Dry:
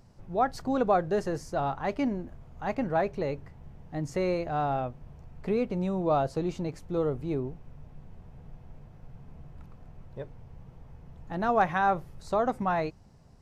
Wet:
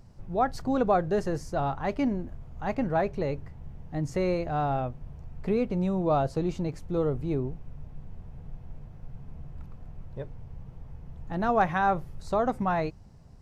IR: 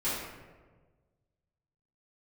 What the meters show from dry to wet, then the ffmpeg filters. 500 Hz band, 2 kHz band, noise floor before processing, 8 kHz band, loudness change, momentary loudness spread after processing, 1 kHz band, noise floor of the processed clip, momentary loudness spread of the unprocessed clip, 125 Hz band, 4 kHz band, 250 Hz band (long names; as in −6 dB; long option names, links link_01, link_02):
+0.5 dB, 0.0 dB, −53 dBFS, can't be measured, +1.0 dB, 21 LU, 0.0 dB, −49 dBFS, 14 LU, +3.5 dB, 0.0 dB, +2.0 dB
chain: -af "lowshelf=frequency=150:gain=7"